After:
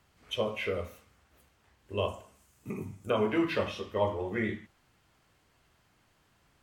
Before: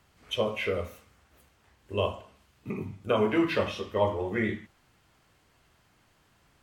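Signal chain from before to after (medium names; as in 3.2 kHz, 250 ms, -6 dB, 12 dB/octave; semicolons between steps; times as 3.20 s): 2.08–3.10 s: resonant high shelf 5.5 kHz +9 dB, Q 1.5; trim -3 dB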